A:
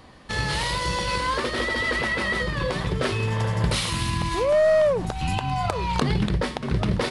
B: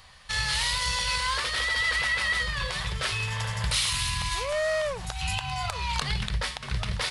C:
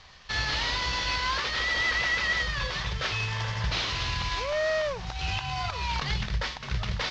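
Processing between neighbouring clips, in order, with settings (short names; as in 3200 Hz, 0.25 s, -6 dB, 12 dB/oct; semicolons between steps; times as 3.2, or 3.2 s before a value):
passive tone stack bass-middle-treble 10-0-10; in parallel at -2 dB: limiter -23.5 dBFS, peak gain reduction 9.5 dB
CVSD 32 kbps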